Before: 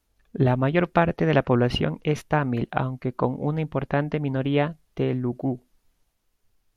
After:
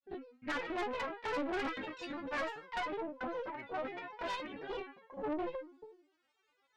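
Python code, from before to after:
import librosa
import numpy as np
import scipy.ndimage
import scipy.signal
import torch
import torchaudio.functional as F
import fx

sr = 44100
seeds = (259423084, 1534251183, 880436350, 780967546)

y = fx.block_reorder(x, sr, ms=142.0, group=3)
y = fx.recorder_agc(y, sr, target_db=-12.0, rise_db_per_s=7.6, max_gain_db=30)
y = scipy.signal.sosfilt(scipy.signal.butter(2, 250.0, 'highpass', fs=sr, output='sos'), y)
y = fx.stiff_resonator(y, sr, f0_hz=370.0, decay_s=0.49, stiffness=0.002)
y = fx.cheby_harmonics(y, sr, harmonics=(4, 5), levels_db=(-6, -17), full_scale_db=-28.0)
y = fx.tilt_shelf(y, sr, db=-6.0, hz=970.0)
y = fx.granulator(y, sr, seeds[0], grain_ms=100.0, per_s=20.0, spray_ms=20.0, spread_st=7)
y = scipy.signal.sosfilt(scipy.signal.butter(2, 3600.0, 'lowpass', fs=sr, output='sos'), y)
y = fx.high_shelf(y, sr, hz=2000.0, db=-7.0)
y = 10.0 ** (-39.0 / 20.0) * np.tanh(y / 10.0 ** (-39.0 / 20.0))
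y = F.gain(torch.from_numpy(y), 7.5).numpy()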